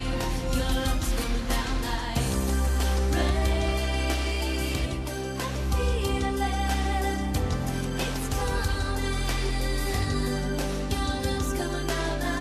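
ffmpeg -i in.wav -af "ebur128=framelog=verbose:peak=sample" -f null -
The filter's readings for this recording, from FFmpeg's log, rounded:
Integrated loudness:
  I:         -27.8 LUFS
  Threshold: -37.8 LUFS
Loudness range:
  LRA:         1.7 LU
  Threshold: -47.7 LUFS
  LRA low:   -28.4 LUFS
  LRA high:  -26.8 LUFS
Sample peak:
  Peak:      -12.5 dBFS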